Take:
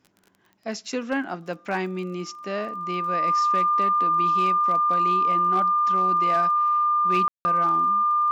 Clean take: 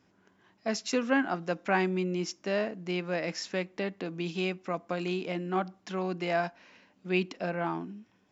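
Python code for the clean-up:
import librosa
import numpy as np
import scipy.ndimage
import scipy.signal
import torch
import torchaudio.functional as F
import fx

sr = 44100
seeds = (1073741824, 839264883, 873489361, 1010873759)

y = fx.fix_declip(x, sr, threshold_db=-15.0)
y = fx.fix_declick_ar(y, sr, threshold=6.5)
y = fx.notch(y, sr, hz=1200.0, q=30.0)
y = fx.fix_ambience(y, sr, seeds[0], print_start_s=0.11, print_end_s=0.61, start_s=7.28, end_s=7.45)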